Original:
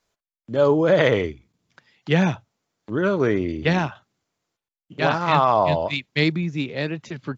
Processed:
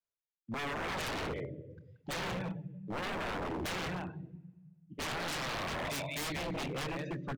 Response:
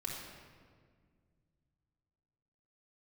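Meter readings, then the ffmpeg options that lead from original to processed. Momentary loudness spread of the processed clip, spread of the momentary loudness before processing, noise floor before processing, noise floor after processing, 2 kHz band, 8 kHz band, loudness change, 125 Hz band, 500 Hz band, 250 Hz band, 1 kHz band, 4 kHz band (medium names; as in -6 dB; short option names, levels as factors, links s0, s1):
13 LU, 11 LU, under -85 dBFS, under -85 dBFS, -12.0 dB, no reading, -16.0 dB, -16.0 dB, -19.5 dB, -16.5 dB, -15.5 dB, -9.0 dB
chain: -filter_complex "[0:a]acrossover=split=150|3000[s0][s1][s2];[s1]acompressor=threshold=0.0891:ratio=10[s3];[s0][s3][s2]amix=inputs=3:normalize=0,asplit=2[s4][s5];[1:a]atrim=start_sample=2205,highshelf=f=5300:g=8,adelay=28[s6];[s5][s6]afir=irnorm=-1:irlink=0,volume=0.316[s7];[s4][s7]amix=inputs=2:normalize=0,afftdn=nr=22:nf=-33,asplit=2[s8][s9];[s9]adelay=180,highpass=300,lowpass=3400,asoftclip=type=hard:threshold=0.112,volume=0.398[s10];[s8][s10]amix=inputs=2:normalize=0,aeval=exprs='0.0447*(abs(mod(val(0)/0.0447+3,4)-2)-1)':c=same,volume=0.562"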